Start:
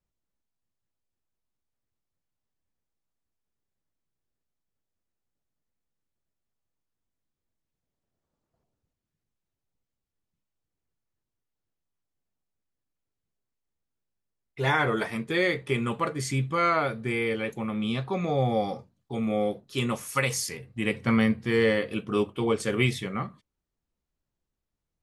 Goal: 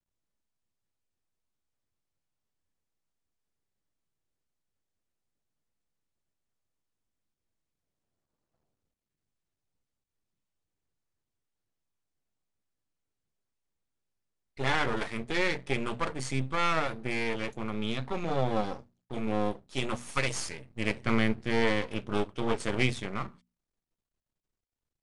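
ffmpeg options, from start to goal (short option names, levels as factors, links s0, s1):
-af "aeval=exprs='max(val(0),0)':c=same,aresample=22050,aresample=44100,bandreject=f=60:t=h:w=6,bandreject=f=120:t=h:w=6,bandreject=f=180:t=h:w=6,bandreject=f=240:t=h:w=6"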